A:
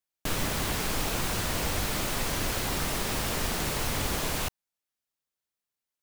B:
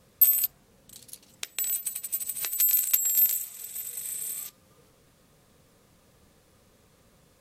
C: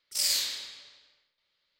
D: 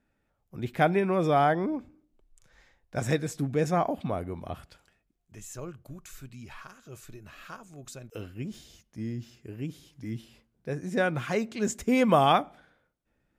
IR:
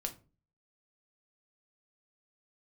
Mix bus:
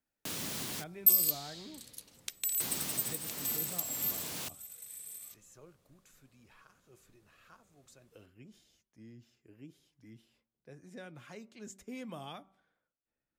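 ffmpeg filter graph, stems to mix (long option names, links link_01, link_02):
-filter_complex "[0:a]highpass=200,volume=-4.5dB,asplit=3[link_01][link_02][link_03];[link_01]atrim=end=0.84,asetpts=PTS-STARTPTS,afade=type=out:start_time=0.836:duration=0.004:curve=hsin[link_04];[link_02]atrim=start=0.84:end=2.6,asetpts=PTS-STARTPTS,volume=0[link_05];[link_03]atrim=start=2.6,asetpts=PTS-STARTPTS,afade=type=in:duration=0.004:curve=hsin[link_06];[link_04][link_05][link_06]concat=n=3:v=0:a=1[link_07];[1:a]adelay=850,volume=-4dB,afade=type=out:start_time=3.02:duration=0.32:silence=0.375837[link_08];[2:a]acompressor=threshold=-34dB:ratio=4,adelay=950,volume=-6.5dB[link_09];[3:a]lowshelf=frequency=130:gain=-9,flanger=delay=0.6:depth=3.3:regen=79:speed=1.2:shape=triangular,volume=-10.5dB,asplit=2[link_10][link_11];[link_11]apad=whole_len=265642[link_12];[link_07][link_12]sidechaincompress=threshold=-42dB:ratio=8:attack=7:release=803[link_13];[link_13][link_08][link_09][link_10]amix=inputs=4:normalize=0,bandreject=frequency=192.2:width_type=h:width=4,bandreject=frequency=384.4:width_type=h:width=4,bandreject=frequency=576.6:width_type=h:width=4,bandreject=frequency=768.8:width_type=h:width=4,bandreject=frequency=961:width_type=h:width=4,bandreject=frequency=1153.2:width_type=h:width=4,bandreject=frequency=1345.4:width_type=h:width=4,acrossover=split=280|3000[link_14][link_15][link_16];[link_15]acompressor=threshold=-54dB:ratio=2[link_17];[link_14][link_17][link_16]amix=inputs=3:normalize=0"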